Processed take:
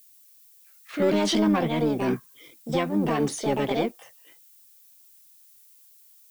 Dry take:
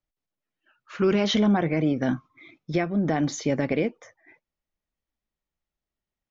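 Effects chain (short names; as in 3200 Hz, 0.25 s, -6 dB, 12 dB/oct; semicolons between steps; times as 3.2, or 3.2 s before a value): sample leveller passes 1; added noise violet -50 dBFS; harmoniser +7 st -1 dB; gain -5.5 dB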